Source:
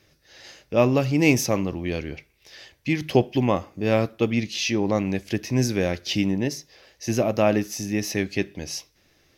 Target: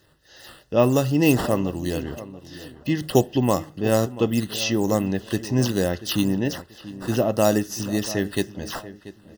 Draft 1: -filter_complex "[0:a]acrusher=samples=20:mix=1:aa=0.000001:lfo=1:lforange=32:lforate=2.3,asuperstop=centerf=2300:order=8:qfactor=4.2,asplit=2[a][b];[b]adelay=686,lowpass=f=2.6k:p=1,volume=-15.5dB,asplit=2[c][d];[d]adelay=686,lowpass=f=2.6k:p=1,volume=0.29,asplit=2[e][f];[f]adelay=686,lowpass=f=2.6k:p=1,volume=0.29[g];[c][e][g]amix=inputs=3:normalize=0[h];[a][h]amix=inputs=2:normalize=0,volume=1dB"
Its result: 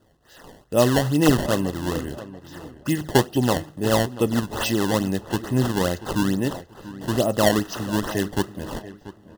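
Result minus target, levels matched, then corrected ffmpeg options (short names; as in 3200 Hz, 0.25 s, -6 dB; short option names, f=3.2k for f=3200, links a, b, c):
decimation with a swept rate: distortion +10 dB
-filter_complex "[0:a]acrusher=samples=4:mix=1:aa=0.000001:lfo=1:lforange=6.4:lforate=2.3,asuperstop=centerf=2300:order=8:qfactor=4.2,asplit=2[a][b];[b]adelay=686,lowpass=f=2.6k:p=1,volume=-15.5dB,asplit=2[c][d];[d]adelay=686,lowpass=f=2.6k:p=1,volume=0.29,asplit=2[e][f];[f]adelay=686,lowpass=f=2.6k:p=1,volume=0.29[g];[c][e][g]amix=inputs=3:normalize=0[h];[a][h]amix=inputs=2:normalize=0,volume=1dB"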